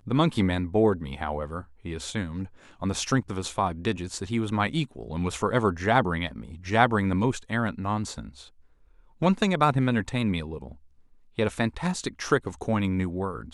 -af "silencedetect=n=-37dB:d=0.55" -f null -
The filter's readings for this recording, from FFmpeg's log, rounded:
silence_start: 8.42
silence_end: 9.22 | silence_duration: 0.80
silence_start: 10.72
silence_end: 11.38 | silence_duration: 0.67